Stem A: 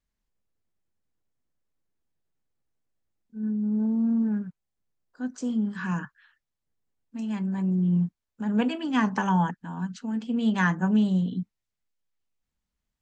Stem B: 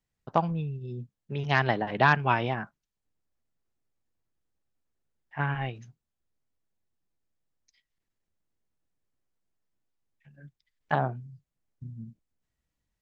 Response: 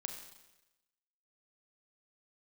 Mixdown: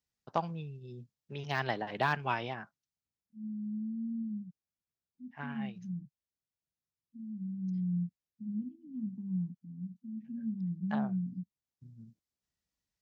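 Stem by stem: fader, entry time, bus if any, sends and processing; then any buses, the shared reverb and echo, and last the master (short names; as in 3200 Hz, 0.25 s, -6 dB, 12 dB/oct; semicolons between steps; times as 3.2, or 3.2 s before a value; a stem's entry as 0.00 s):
-5.5 dB, 0.00 s, no send, inverse Chebyshev low-pass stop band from 540 Hz, stop band 50 dB
-6.5 dB, 0.00 s, no send, de-esser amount 85%; bell 5200 Hz +8 dB 1.1 oct; auto duck -6 dB, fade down 1.20 s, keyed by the first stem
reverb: off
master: HPF 55 Hz; low shelf 210 Hz -5 dB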